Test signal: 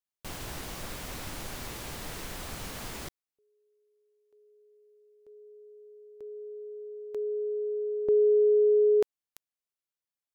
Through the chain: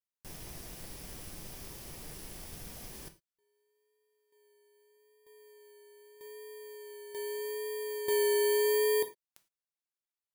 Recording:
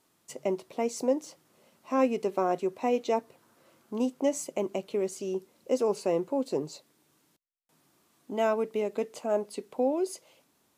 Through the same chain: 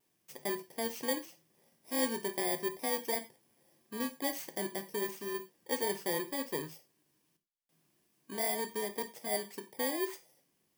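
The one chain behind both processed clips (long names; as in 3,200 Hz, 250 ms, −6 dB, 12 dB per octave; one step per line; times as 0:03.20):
samples in bit-reversed order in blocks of 32 samples
reverb whose tail is shaped and stops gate 130 ms falling, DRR 7.5 dB
pitch vibrato 0.81 Hz 25 cents
level −7 dB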